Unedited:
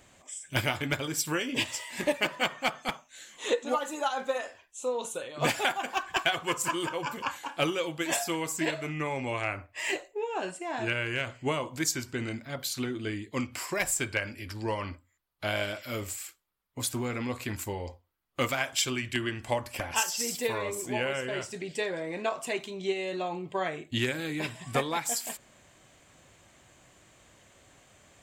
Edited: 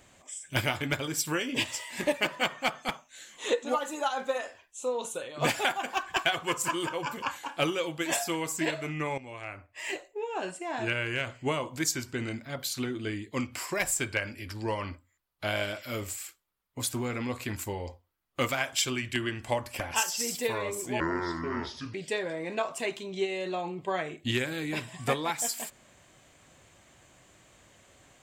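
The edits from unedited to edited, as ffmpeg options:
-filter_complex "[0:a]asplit=4[s0][s1][s2][s3];[s0]atrim=end=9.18,asetpts=PTS-STARTPTS,afade=t=out:st=9.176:d=0.004:c=hsin:silence=0.211349[s4];[s1]atrim=start=9.18:end=21.004,asetpts=PTS-STARTPTS,afade=t=in:d=1.36:silence=0.211349[s5];[s2]atrim=start=21:end=21.61,asetpts=PTS-STARTPTS,asetrate=28665,aresample=44100,atrim=end_sample=41386,asetpts=PTS-STARTPTS[s6];[s3]atrim=start=21.606[s7];[s4][s5]concat=n=2:v=0:a=1[s8];[s8][s6]acrossfade=d=0.004:c1=hsin:c2=hsin[s9];[s9][s7]acrossfade=d=0.004:c1=hsin:c2=hsin"

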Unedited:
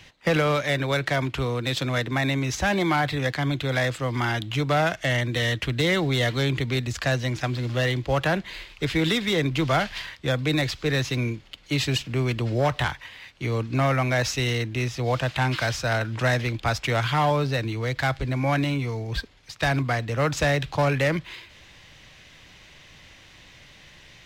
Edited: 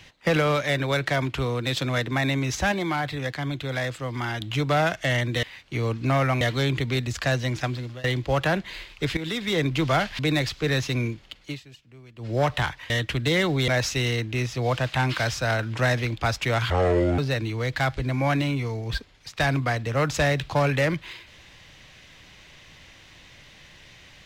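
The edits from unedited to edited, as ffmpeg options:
-filter_complex "[0:a]asplit=14[s0][s1][s2][s3][s4][s5][s6][s7][s8][s9][s10][s11][s12][s13];[s0]atrim=end=2.722[s14];[s1]atrim=start=2.718:end=4.412,asetpts=PTS-STARTPTS,volume=0.631[s15];[s2]atrim=start=4.408:end=5.432[s16];[s3]atrim=start=13.118:end=14.102[s17];[s4]atrim=start=6.208:end=7.84,asetpts=PTS-STARTPTS,afade=t=out:st=1.232:d=0.4:silence=0.0707946[s18];[s5]atrim=start=7.84:end=8.97,asetpts=PTS-STARTPTS,afade=t=in:d=0.004:c=hsin:silence=0.0707946,afade=t=out:st=1.126:d=0.004:c=hsin:silence=0.237137[s19];[s6]atrim=start=8.97:end=9.992,asetpts=PTS-STARTPTS,afade=t=in:d=0.44:silence=0.237137[s20];[s7]atrim=start=10.408:end=11.82,asetpts=PTS-STARTPTS,afade=t=out:st=1.172:d=0.24:silence=0.0668344[s21];[s8]atrim=start=11.82:end=12.38,asetpts=PTS-STARTPTS,volume=0.0668[s22];[s9]atrim=start=12.38:end=13.122,asetpts=PTS-STARTPTS,afade=t=in:d=0.24:silence=0.0668344[s23];[s10]atrim=start=5.428:end=6.212[s24];[s11]atrim=start=14.098:end=17.124[s25];[s12]atrim=start=17.12:end=17.41,asetpts=PTS-STARTPTS,asetrate=26460,aresample=44100[s26];[s13]atrim=start=17.406[s27];[s14][s15]acrossfade=d=0.004:c1=hsin:c2=hsin[s28];[s28][s16]acrossfade=d=0.004:c1=hsin:c2=hsin[s29];[s29][s17]acrossfade=d=0.004:c1=hsin:c2=hsin[s30];[s18][s19][s20]concat=n=3:v=0:a=1[s31];[s30][s31]acrossfade=d=0.004:c1=hsin:c2=hsin[s32];[s21][s22][s23]concat=n=3:v=0:a=1[s33];[s32][s33]acrossfade=d=0.004:c1=hsin:c2=hsin[s34];[s34][s24]acrossfade=d=0.004:c1=hsin:c2=hsin[s35];[s35][s25]acrossfade=d=0.004:c1=hsin:c2=hsin[s36];[s36][s26]acrossfade=d=0.004:c1=hsin:c2=hsin[s37];[s37][s27]acrossfade=d=0.004:c1=hsin:c2=hsin"

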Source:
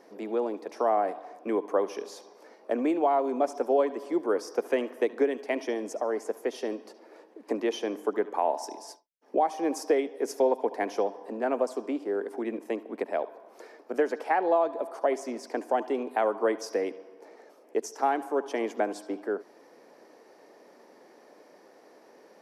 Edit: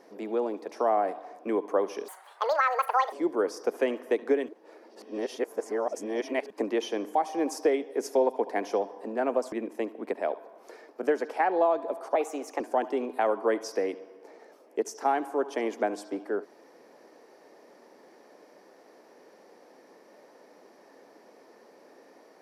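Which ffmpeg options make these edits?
-filter_complex "[0:a]asplit=9[s0][s1][s2][s3][s4][s5][s6][s7][s8];[s0]atrim=end=2.084[s9];[s1]atrim=start=2.08:end=4.03,asetpts=PTS-STARTPTS,asetrate=82467,aresample=44100[s10];[s2]atrim=start=4.026:end=5.392[s11];[s3]atrim=start=5.388:end=7.412,asetpts=PTS-STARTPTS,areverse[s12];[s4]atrim=start=7.408:end=8.062[s13];[s5]atrim=start=9.398:end=11.772[s14];[s6]atrim=start=12.428:end=15.064[s15];[s7]atrim=start=15.06:end=15.58,asetpts=PTS-STARTPTS,asetrate=50715,aresample=44100[s16];[s8]atrim=start=15.576[s17];[s9][s10]acrossfade=d=0.004:c1=hsin:c2=hsin[s18];[s18][s11]acrossfade=d=0.004:c1=hsin:c2=hsin[s19];[s19][s12]acrossfade=d=0.004:c1=hsin:c2=hsin[s20];[s20][s13]acrossfade=d=0.004:c1=hsin:c2=hsin[s21];[s21][s14]acrossfade=d=0.004:c1=hsin:c2=hsin[s22];[s22][s15]acrossfade=d=0.004:c1=hsin:c2=hsin[s23];[s23][s16]acrossfade=d=0.004:c1=hsin:c2=hsin[s24];[s24][s17]acrossfade=d=0.004:c1=hsin:c2=hsin"

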